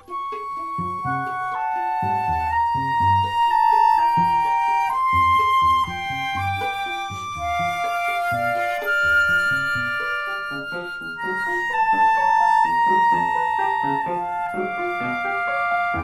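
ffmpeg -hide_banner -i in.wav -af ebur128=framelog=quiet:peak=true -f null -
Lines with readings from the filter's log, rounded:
Integrated loudness:
  I:         -20.6 LUFS
  Threshold: -30.6 LUFS
Loudness range:
  LRA:         3.9 LU
  Threshold: -40.1 LUFS
  LRA low:   -22.1 LUFS
  LRA high:  -18.2 LUFS
True peak:
  Peak:       -8.0 dBFS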